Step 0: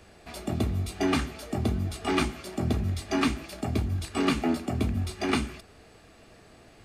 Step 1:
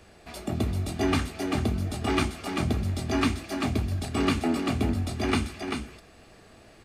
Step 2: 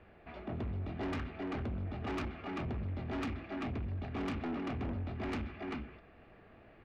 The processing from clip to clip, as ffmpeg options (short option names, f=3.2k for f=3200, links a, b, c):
-af "aecho=1:1:390:0.531"
-af "lowpass=f=2.6k:w=0.5412,lowpass=f=2.6k:w=1.3066,asoftclip=type=tanh:threshold=-28.5dB,volume=-5.5dB"